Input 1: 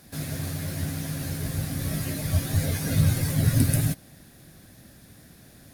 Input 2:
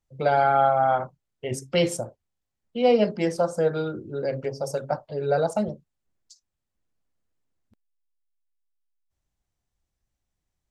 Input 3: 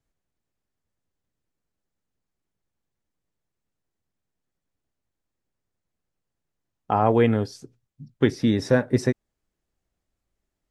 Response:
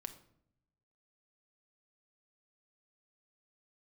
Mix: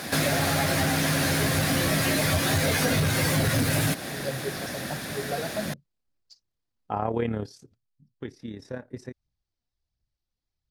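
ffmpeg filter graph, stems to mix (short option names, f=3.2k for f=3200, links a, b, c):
-filter_complex "[0:a]asplit=2[a][b];[b]highpass=f=720:p=1,volume=30dB,asoftclip=type=tanh:threshold=-8dB[c];[a][c]amix=inputs=2:normalize=0,lowpass=f=2.9k:p=1,volume=-6dB,volume=1dB[d];[1:a]lowpass=f=4.7k:t=q:w=3.6,equalizer=f=110:w=0.8:g=8,aphaser=in_gain=1:out_gain=1:delay=4.5:decay=0.61:speed=1.4:type=triangular,volume=-11dB[e];[2:a]tremolo=f=35:d=0.571,volume=-4dB,afade=t=out:st=7.66:d=0.24:silence=0.298538[f];[d][e][f]amix=inputs=3:normalize=0,acompressor=threshold=-21dB:ratio=6"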